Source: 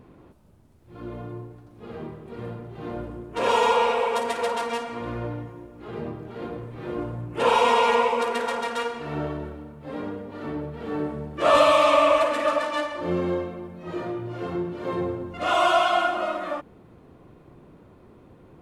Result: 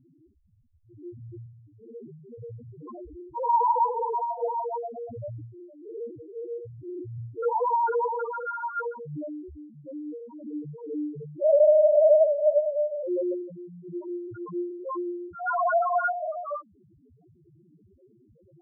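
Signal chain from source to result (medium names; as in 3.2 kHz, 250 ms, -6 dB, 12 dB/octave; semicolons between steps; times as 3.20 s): LFO low-pass saw down 0.15 Hz 550–2100 Hz; loudest bins only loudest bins 1; trim +3 dB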